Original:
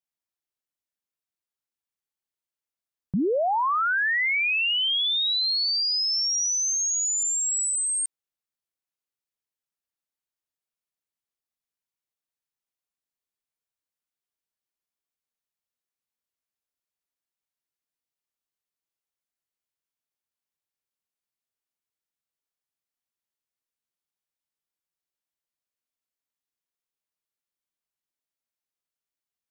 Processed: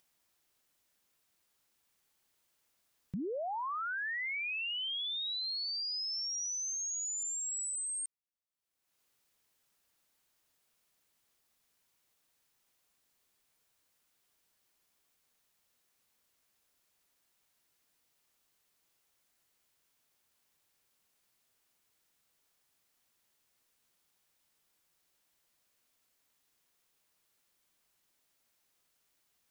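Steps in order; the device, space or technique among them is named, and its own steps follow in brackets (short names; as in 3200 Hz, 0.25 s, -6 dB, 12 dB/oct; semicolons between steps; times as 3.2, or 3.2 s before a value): upward and downward compression (upward compressor, threshold -47 dBFS; compressor 4:1, threshold -27 dBFS, peak gain reduction 4.5 dB); gain -9 dB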